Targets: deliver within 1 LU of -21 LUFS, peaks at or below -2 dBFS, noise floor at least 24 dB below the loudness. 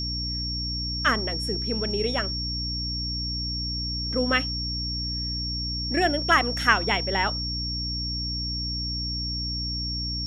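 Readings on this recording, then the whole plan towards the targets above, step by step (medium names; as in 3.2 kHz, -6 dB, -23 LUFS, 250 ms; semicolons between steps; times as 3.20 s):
hum 60 Hz; highest harmonic 300 Hz; hum level -30 dBFS; steady tone 5.5 kHz; tone level -29 dBFS; loudness -25.5 LUFS; peak level -4.5 dBFS; loudness target -21.0 LUFS
-> hum notches 60/120/180/240/300 Hz; band-stop 5.5 kHz, Q 30; trim +4.5 dB; peak limiter -2 dBFS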